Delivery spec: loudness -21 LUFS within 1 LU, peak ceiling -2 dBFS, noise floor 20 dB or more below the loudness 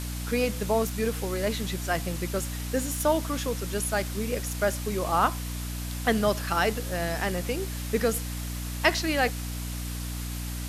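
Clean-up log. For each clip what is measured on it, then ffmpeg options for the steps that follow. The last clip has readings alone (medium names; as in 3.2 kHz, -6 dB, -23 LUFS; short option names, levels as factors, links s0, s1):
hum 60 Hz; highest harmonic 300 Hz; hum level -31 dBFS; noise floor -34 dBFS; noise floor target -49 dBFS; loudness -28.5 LUFS; peak level -7.5 dBFS; loudness target -21.0 LUFS
-> -af "bandreject=f=60:t=h:w=4,bandreject=f=120:t=h:w=4,bandreject=f=180:t=h:w=4,bandreject=f=240:t=h:w=4,bandreject=f=300:t=h:w=4"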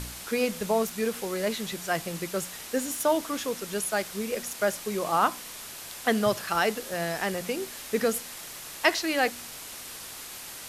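hum not found; noise floor -42 dBFS; noise floor target -49 dBFS
-> -af "afftdn=nr=7:nf=-42"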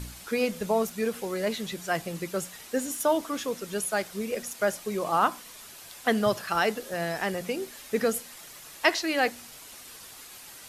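noise floor -47 dBFS; noise floor target -49 dBFS
-> -af "afftdn=nr=6:nf=-47"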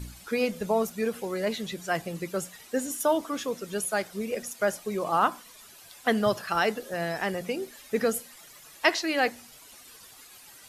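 noise floor -51 dBFS; loudness -29.0 LUFS; peak level -8.0 dBFS; loudness target -21.0 LUFS
-> -af "volume=2.51,alimiter=limit=0.794:level=0:latency=1"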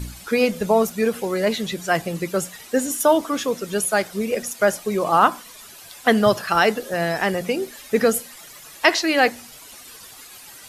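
loudness -21.0 LUFS; peak level -2.0 dBFS; noise floor -43 dBFS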